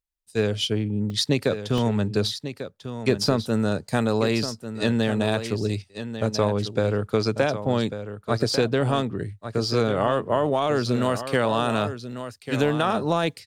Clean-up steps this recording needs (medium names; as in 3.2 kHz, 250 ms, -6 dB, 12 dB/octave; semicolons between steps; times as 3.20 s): interpolate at 1.10/1.78/3.71/12.12 s, 1.5 ms; inverse comb 1145 ms -10.5 dB